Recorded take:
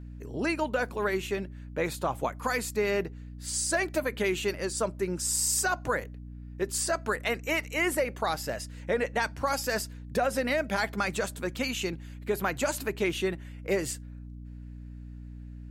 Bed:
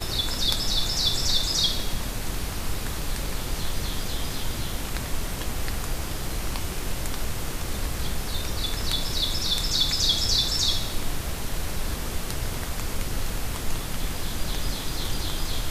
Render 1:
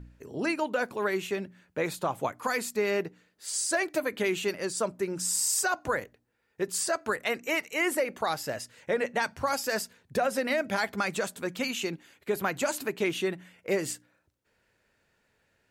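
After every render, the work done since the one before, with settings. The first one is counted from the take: de-hum 60 Hz, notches 5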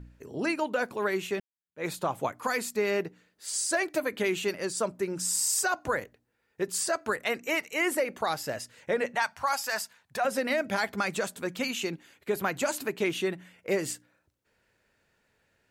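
1.4–1.85 fade in exponential; 9.15–10.25 resonant low shelf 580 Hz -11 dB, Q 1.5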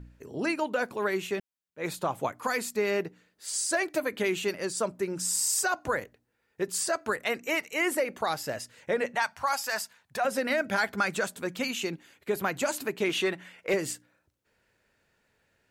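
10.42–11.26 bell 1500 Hz +6 dB 0.28 oct; 13.09–13.74 overdrive pedal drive 12 dB, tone 5200 Hz, clips at -15 dBFS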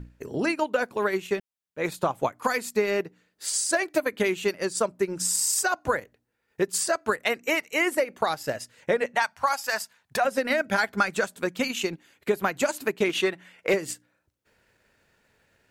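transient shaper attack +4 dB, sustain -7 dB; in parallel at -1.5 dB: compressor, threshold -34 dBFS, peak gain reduction 14.5 dB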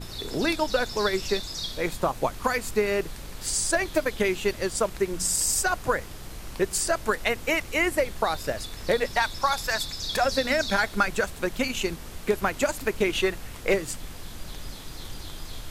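add bed -10 dB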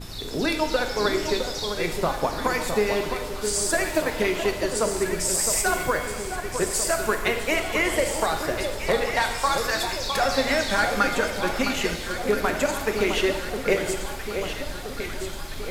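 echo with dull and thin repeats by turns 0.661 s, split 1300 Hz, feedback 76%, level -6.5 dB; shimmer reverb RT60 1.2 s, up +7 st, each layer -8 dB, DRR 6 dB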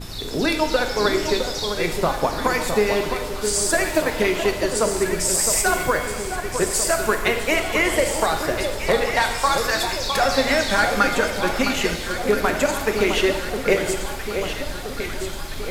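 gain +3.5 dB

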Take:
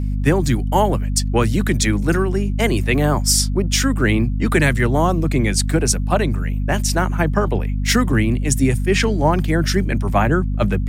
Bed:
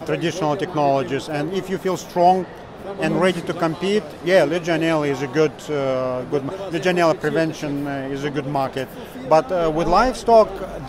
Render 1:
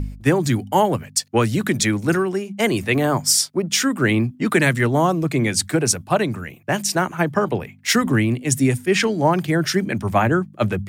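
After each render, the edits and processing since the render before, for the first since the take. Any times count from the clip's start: de-hum 50 Hz, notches 5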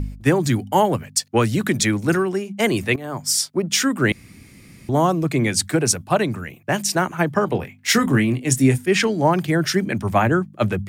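2.96–3.55 fade in, from -19.5 dB; 4.12–4.89 room tone; 7.47–8.78 doubler 23 ms -8.5 dB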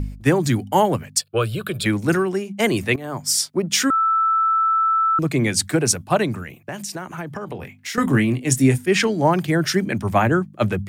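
1.21–1.86 fixed phaser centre 1300 Hz, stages 8; 3.9–5.19 bleep 1320 Hz -15 dBFS; 6.42–7.98 compressor, threshold -27 dBFS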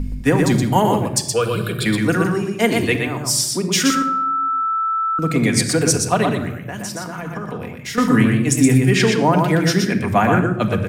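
echo 0.121 s -4.5 dB; shoebox room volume 3300 m³, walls furnished, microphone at 1.8 m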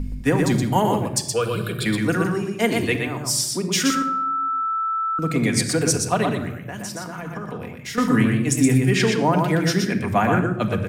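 gain -3.5 dB

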